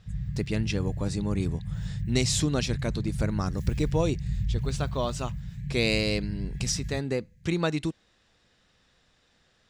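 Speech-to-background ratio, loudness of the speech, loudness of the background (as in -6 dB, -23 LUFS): 4.5 dB, -29.5 LUFS, -34.0 LUFS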